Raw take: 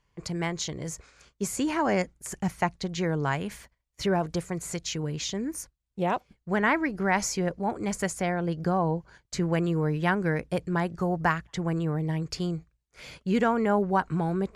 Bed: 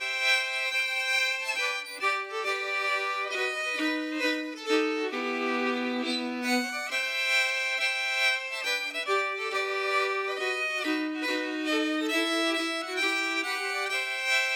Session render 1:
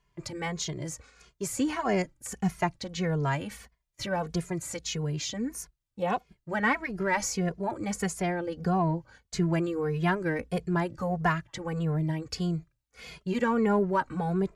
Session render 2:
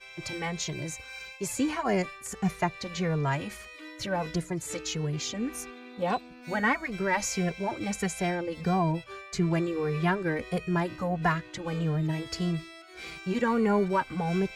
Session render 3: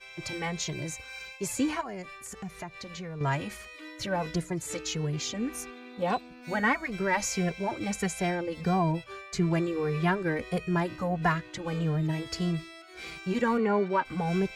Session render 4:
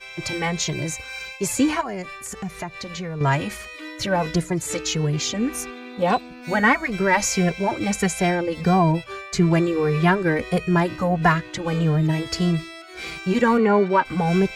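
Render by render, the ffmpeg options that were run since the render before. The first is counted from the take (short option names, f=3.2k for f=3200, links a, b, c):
-filter_complex "[0:a]asplit=2[a][b];[b]asoftclip=type=tanh:threshold=-24.5dB,volume=-11dB[c];[a][c]amix=inputs=2:normalize=0,asplit=2[d][e];[e]adelay=2.4,afreqshift=-1.6[f];[d][f]amix=inputs=2:normalize=1"
-filter_complex "[1:a]volume=-16.5dB[a];[0:a][a]amix=inputs=2:normalize=0"
-filter_complex "[0:a]asettb=1/sr,asplit=3[a][b][c];[a]atrim=end=1.814[d];[b]atrim=start=1.81:end=3.21,asetpts=PTS-STARTPTS,afade=t=in:d=0.004:c=qsin,afade=t=out:st=1.396:d=0.004:c=qsin,acompressor=threshold=-39dB:ratio=3:attack=3.2:release=140:knee=1:detection=peak[e];[c]atrim=start=3.206[f];[d][e]acrossfade=d=0.004:c1=hsin:c2=qsin[g];[g][f]acrossfade=d=0.004:c1=qsin:c2=hsin,asplit=3[h][i][j];[h]afade=t=out:st=13.57:d=0.02[k];[i]highpass=220,lowpass=4.2k,afade=t=in:st=13.57:d=0.02,afade=t=out:st=14.04:d=0.02[l];[j]afade=t=in:st=14.04:d=0.02[m];[k][l][m]amix=inputs=3:normalize=0"
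-af "volume=8.5dB"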